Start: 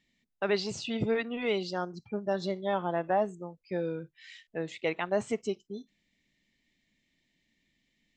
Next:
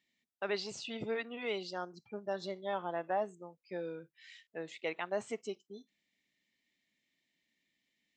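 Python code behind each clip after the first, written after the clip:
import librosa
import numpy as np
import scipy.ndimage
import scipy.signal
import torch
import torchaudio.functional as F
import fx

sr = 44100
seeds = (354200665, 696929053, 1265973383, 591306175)

y = fx.highpass(x, sr, hz=380.0, slope=6)
y = y * librosa.db_to_amplitude(-5.0)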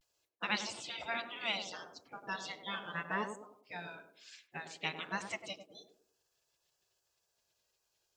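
y = fx.spec_gate(x, sr, threshold_db=-15, keep='weak')
y = fx.vibrato(y, sr, rate_hz=0.34, depth_cents=38.0)
y = fx.echo_banded(y, sr, ms=99, feedback_pct=41, hz=380.0, wet_db=-5.0)
y = y * librosa.db_to_amplitude(9.5)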